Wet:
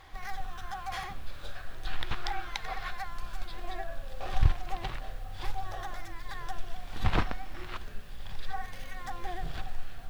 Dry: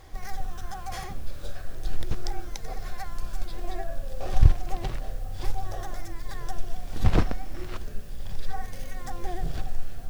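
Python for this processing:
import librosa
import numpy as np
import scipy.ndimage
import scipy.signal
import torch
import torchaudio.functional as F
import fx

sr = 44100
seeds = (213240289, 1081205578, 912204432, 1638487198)

y = fx.band_shelf(x, sr, hz=1800.0, db=fx.steps((0.0, 9.5), (1.85, 16.0), (2.9, 9.0)), octaves=2.7)
y = F.gain(torch.from_numpy(y), -7.0).numpy()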